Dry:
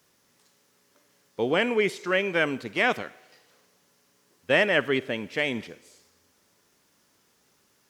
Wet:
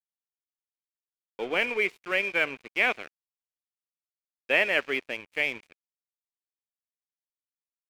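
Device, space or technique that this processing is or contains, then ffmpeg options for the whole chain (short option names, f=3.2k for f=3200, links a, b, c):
pocket radio on a weak battery: -af "highpass=330,lowpass=4.3k,aeval=exprs='sgn(val(0))*max(abs(val(0))-0.0119,0)':c=same,equalizer=f=2.4k:t=o:w=0.37:g=10.5,volume=-3.5dB"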